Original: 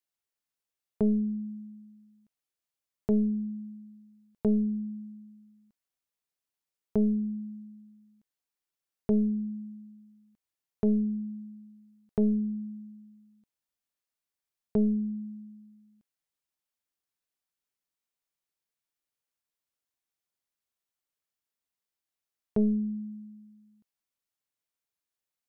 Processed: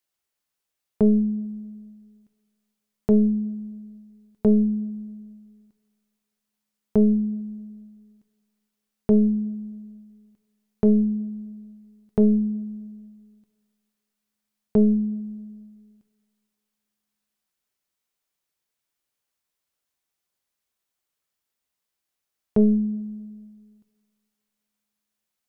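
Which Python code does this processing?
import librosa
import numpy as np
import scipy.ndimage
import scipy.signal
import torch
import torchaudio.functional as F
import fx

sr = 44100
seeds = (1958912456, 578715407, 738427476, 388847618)

y = fx.rev_double_slope(x, sr, seeds[0], early_s=0.28, late_s=2.1, knee_db=-19, drr_db=10.0)
y = y * 10.0 ** (6.5 / 20.0)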